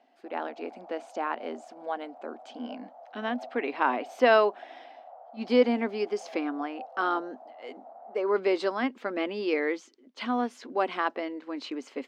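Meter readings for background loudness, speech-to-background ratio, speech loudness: -47.5 LUFS, 18.0 dB, -29.5 LUFS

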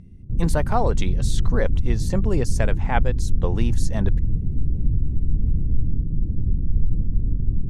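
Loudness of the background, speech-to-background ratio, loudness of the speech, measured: -25.5 LUFS, -2.0 dB, -27.5 LUFS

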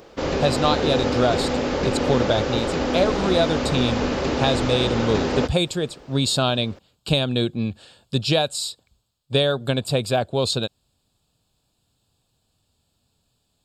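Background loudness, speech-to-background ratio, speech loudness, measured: -24.0 LUFS, 0.5 dB, -23.5 LUFS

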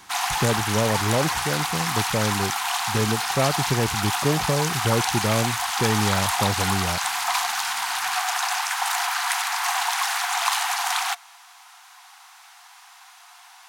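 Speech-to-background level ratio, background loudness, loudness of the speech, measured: -2.5 dB, -24.0 LUFS, -26.5 LUFS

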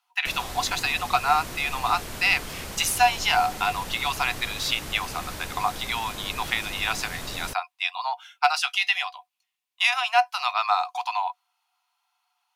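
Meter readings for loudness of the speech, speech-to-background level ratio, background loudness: -25.0 LUFS, 11.0 dB, -36.0 LUFS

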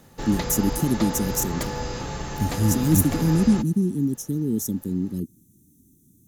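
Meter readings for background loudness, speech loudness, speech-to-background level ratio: -31.0 LUFS, -23.5 LUFS, 7.5 dB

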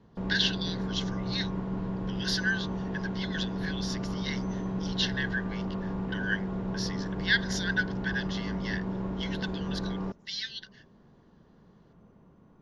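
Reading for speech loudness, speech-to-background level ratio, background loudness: -33.5 LUFS, 0.5 dB, -34.0 LUFS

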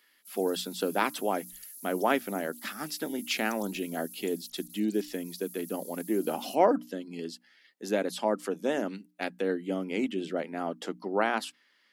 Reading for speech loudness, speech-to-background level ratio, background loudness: -31.5 LUFS, 14.0 dB, -45.5 LUFS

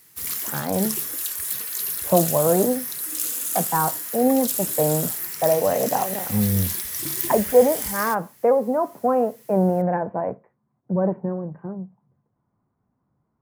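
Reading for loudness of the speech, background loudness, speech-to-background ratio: -23.0 LUFS, -25.5 LUFS, 2.5 dB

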